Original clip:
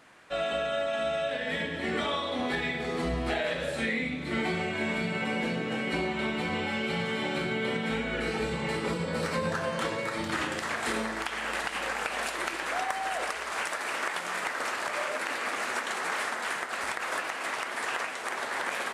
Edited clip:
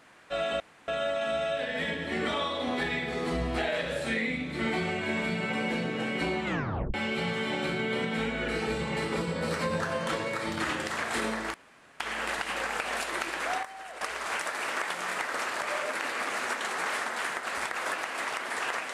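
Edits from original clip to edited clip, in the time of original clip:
0.60 s: insert room tone 0.28 s
6.17 s: tape stop 0.49 s
11.26 s: insert room tone 0.46 s
12.89–13.27 s: gain -11 dB

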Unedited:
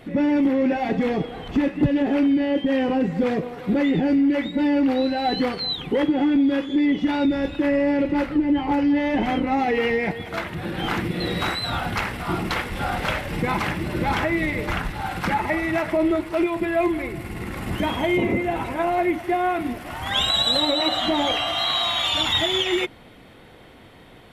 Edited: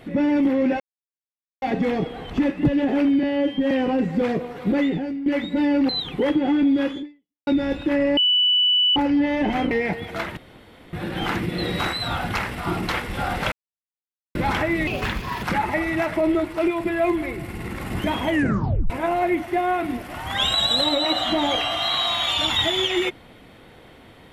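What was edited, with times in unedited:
0.80 s: insert silence 0.82 s
2.41–2.73 s: stretch 1.5×
3.85–4.28 s: fade out quadratic, to -12 dB
4.91–5.62 s: delete
6.70–7.20 s: fade out exponential
7.90–8.69 s: bleep 2.97 kHz -15 dBFS
9.44–9.89 s: delete
10.55 s: insert room tone 0.56 s
13.14–13.97 s: mute
14.49–15.19 s: speed 125%
18.05 s: tape stop 0.61 s

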